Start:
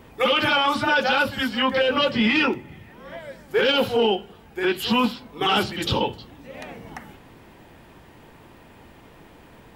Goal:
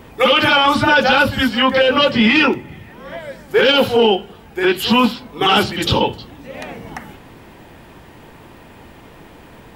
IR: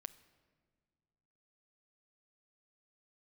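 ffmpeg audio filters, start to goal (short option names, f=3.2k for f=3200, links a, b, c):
-filter_complex "[0:a]asettb=1/sr,asplit=3[a][b][c];[a]atrim=end=0.624[d];[b]atrim=start=0.62:end=1.49,asetpts=PTS-STARTPTS,afade=t=in:d=0.004:c=qsin,afade=t=out:st=0.866:d=0.004:c=qsin,lowshelf=f=160:g=8.5[e];[c]atrim=start=1.486[f];[d][e]acrossfade=d=0.004:c1=hsin:c2=qsin[g];[g][f]acrossfade=d=0.004:c1=qsin:c2=hsin,volume=7dB"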